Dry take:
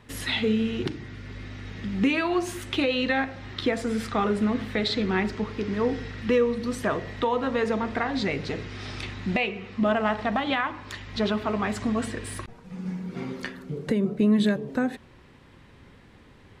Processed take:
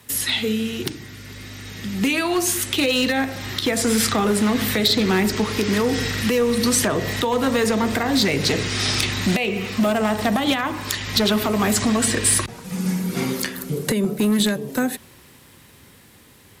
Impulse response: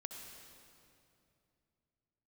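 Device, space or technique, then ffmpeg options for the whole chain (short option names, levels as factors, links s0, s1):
FM broadcast chain: -filter_complex "[0:a]highpass=66,dynaudnorm=f=380:g=17:m=5.31,acrossover=split=220|620|7500[s0][s1][s2][s3];[s0]acompressor=threshold=0.0708:ratio=4[s4];[s1]acompressor=threshold=0.1:ratio=4[s5];[s2]acompressor=threshold=0.0631:ratio=4[s6];[s3]acompressor=threshold=0.00178:ratio=4[s7];[s4][s5][s6][s7]amix=inputs=4:normalize=0,aemphasis=mode=production:type=50fm,alimiter=limit=0.282:level=0:latency=1:release=167,asoftclip=type=hard:threshold=0.178,lowpass=f=15000:w=0.5412,lowpass=f=15000:w=1.3066,aemphasis=mode=production:type=50fm,volume=1.19"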